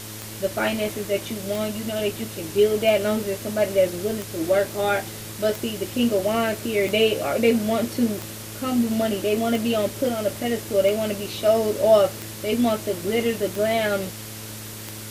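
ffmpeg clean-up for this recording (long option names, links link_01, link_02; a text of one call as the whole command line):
ffmpeg -i in.wav -af "adeclick=threshold=4,bandreject=frequency=108.2:width_type=h:width=4,bandreject=frequency=216.4:width_type=h:width=4,bandreject=frequency=324.6:width_type=h:width=4,bandreject=frequency=432.8:width_type=h:width=4,bandreject=frequency=541:width_type=h:width=4,afwtdn=0.014" out.wav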